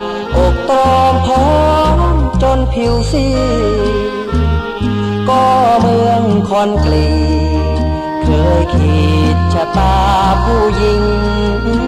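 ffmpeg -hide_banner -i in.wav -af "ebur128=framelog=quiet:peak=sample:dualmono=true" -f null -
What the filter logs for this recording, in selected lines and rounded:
Integrated loudness:
  I:          -9.2 LUFS
  Threshold: -19.2 LUFS
Loudness range:
  LRA:         1.8 LU
  Threshold: -29.4 LUFS
  LRA low:   -10.5 LUFS
  LRA high:   -8.7 LUFS
Sample peak:
  Peak:       -4.7 dBFS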